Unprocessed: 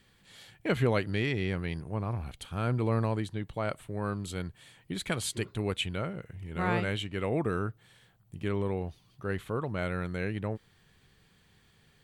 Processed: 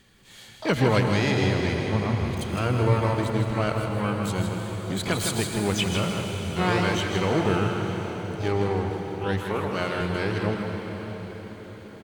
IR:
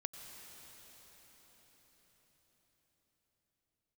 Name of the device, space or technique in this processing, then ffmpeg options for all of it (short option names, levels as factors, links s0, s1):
shimmer-style reverb: -filter_complex "[0:a]asettb=1/sr,asplit=3[s0][s1][s2];[s0]atrim=end=9.434[s3];[s1]atrim=start=9.43:end=10.01,asetpts=PTS-STARTPTS,afade=t=in:d=0.004:c=qsin,afade=t=out:st=0.576:d=0.004:c=qsin,highpass=230[s4];[s2]atrim=start=10.006[s5];[s3][s4]acrossfade=d=0.004:c1=hsin:c2=qsin[s6];[s6][s5]acrossfade=d=0.004:c1=qsin:c2=hsin,asplit=2[s7][s8];[s8]asetrate=88200,aresample=44100,atempo=0.5,volume=0.398[s9];[s7][s9]amix=inputs=2:normalize=0[s10];[1:a]atrim=start_sample=2205[s11];[s10][s11]afir=irnorm=-1:irlink=0,aecho=1:1:159:0.447,volume=2.51"